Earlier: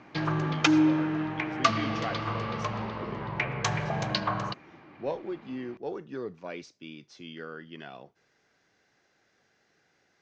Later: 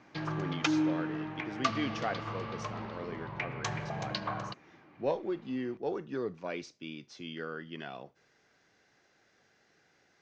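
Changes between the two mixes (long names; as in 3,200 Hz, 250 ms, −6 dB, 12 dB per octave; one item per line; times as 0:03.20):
background −7.0 dB
reverb: on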